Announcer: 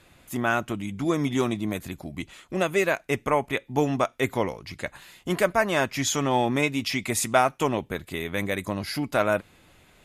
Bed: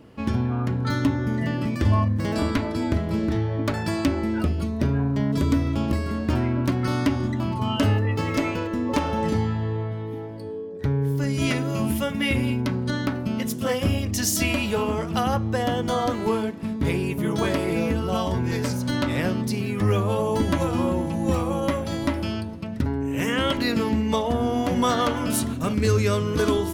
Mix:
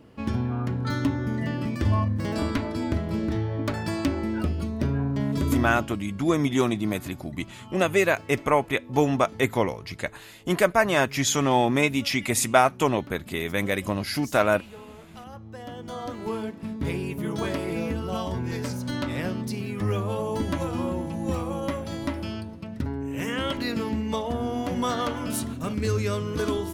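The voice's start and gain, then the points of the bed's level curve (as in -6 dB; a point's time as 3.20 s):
5.20 s, +2.0 dB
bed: 5.69 s -3 dB
5.98 s -20 dB
15.25 s -20 dB
16.49 s -5 dB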